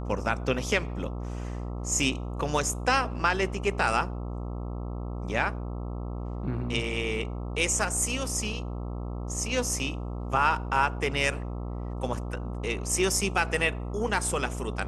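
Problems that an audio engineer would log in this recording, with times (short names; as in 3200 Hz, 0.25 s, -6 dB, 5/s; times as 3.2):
buzz 60 Hz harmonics 22 -34 dBFS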